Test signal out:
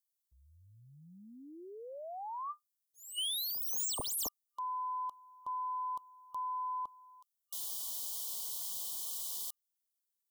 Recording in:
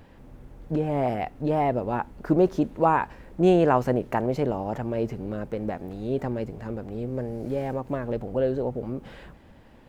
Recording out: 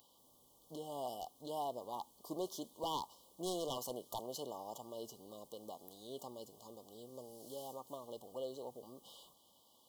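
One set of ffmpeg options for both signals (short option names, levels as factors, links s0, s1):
-af "aderivative,aeval=exprs='0.0168*(abs(mod(val(0)/0.0168+3,4)-2)-1)':c=same,afftfilt=real='re*(1-between(b*sr/4096,1200,2900))':imag='im*(1-between(b*sr/4096,1200,2900))':win_size=4096:overlap=0.75,volume=1.68"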